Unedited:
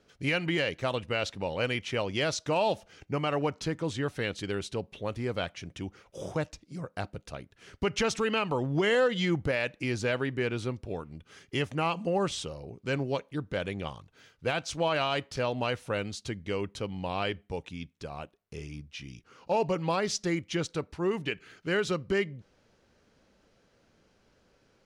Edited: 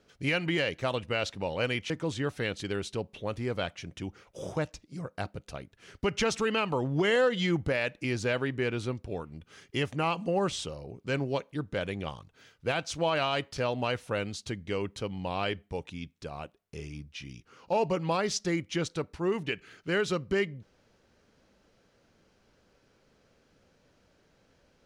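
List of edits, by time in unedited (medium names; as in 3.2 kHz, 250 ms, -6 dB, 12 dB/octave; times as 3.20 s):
1.90–3.69 s: delete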